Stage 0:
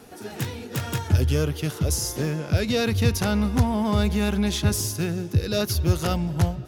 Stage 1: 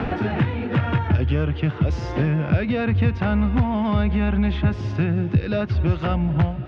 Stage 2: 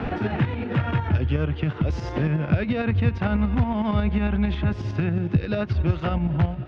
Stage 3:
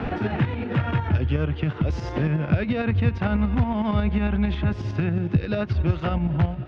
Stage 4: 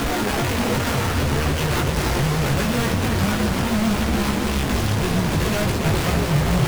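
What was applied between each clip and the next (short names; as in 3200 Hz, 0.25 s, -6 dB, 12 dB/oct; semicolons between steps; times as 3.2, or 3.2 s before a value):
LPF 2700 Hz 24 dB/oct; bell 430 Hz -5.5 dB 0.43 oct; three-band squash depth 100%; gain +2 dB
tremolo saw up 11 Hz, depth 50%
nothing audible
infinite clipping; chorus voices 6, 0.71 Hz, delay 18 ms, depth 4.4 ms; warbling echo 0.278 s, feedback 75%, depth 141 cents, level -6.5 dB; gain +4 dB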